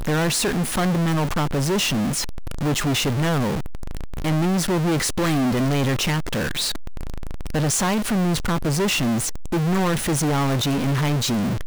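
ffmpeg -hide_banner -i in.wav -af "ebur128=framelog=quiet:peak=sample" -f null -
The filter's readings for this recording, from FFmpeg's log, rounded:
Integrated loudness:
  I:         -21.8 LUFS
  Threshold: -32.1 LUFS
Loudness range:
  LRA:         1.5 LU
  Threshold: -42.3 LUFS
  LRA low:   -23.0 LUFS
  LRA high:  -21.5 LUFS
Sample peak:
  Peak:      -18.0 dBFS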